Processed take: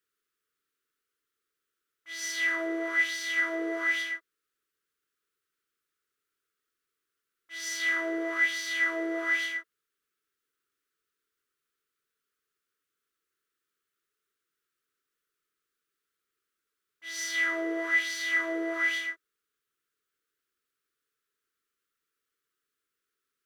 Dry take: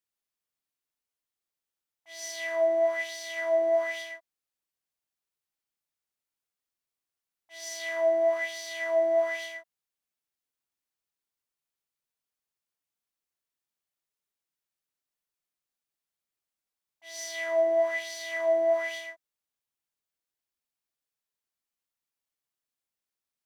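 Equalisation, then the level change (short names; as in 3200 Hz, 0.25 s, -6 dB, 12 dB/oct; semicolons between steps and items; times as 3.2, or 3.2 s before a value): EQ curve 210 Hz 0 dB, 440 Hz +13 dB, 750 Hz -23 dB, 1300 Hz +14 dB, 2300 Hz +4 dB, 3400 Hz +4 dB, 4800 Hz +1 dB; +1.5 dB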